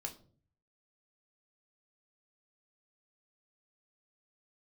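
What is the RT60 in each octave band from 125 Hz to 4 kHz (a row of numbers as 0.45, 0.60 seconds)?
0.90, 0.60, 0.55, 0.40, 0.30, 0.30 seconds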